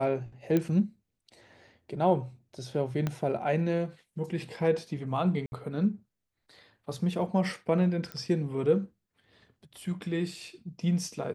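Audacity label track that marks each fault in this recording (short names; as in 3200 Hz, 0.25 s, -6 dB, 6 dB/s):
0.570000	0.570000	pop -15 dBFS
3.070000	3.070000	pop -17 dBFS
5.460000	5.520000	gap 61 ms
8.120000	8.120000	pop -22 dBFS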